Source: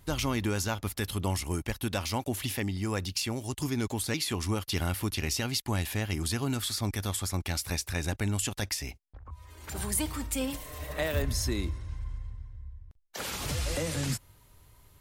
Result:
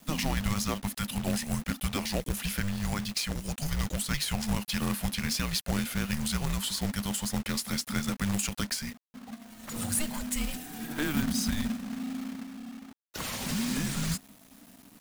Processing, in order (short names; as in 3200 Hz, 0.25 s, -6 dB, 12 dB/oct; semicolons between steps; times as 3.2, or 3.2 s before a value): frequency shift -300 Hz; companded quantiser 4-bit